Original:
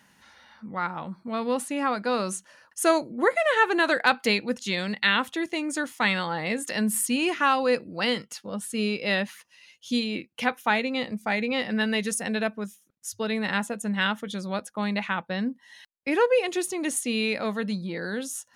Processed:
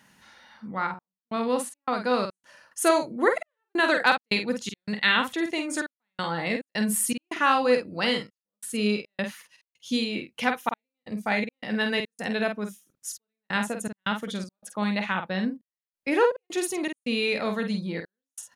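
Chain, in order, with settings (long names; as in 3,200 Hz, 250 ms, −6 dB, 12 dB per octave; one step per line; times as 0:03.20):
gate pattern "xxxxx..xx.xx." 80 BPM −60 dB
double-tracking delay 48 ms −6.5 dB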